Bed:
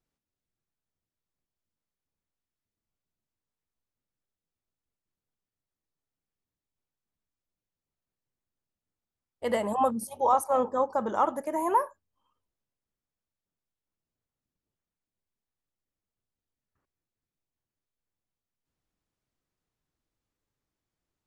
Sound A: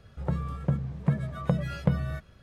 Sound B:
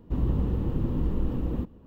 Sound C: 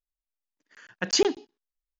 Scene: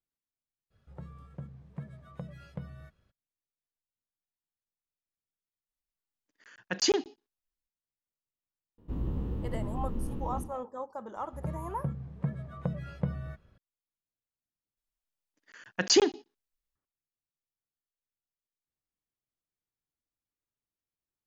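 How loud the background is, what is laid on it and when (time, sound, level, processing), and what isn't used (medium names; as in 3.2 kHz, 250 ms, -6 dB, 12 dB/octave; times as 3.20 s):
bed -12.5 dB
0.70 s: add A -16 dB, fades 0.02 s
5.69 s: add C -4 dB
8.78 s: add B -9 dB + spectral sustain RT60 0.45 s
11.16 s: add A -7 dB + treble shelf 2.6 kHz -9.5 dB
14.77 s: add C -0.5 dB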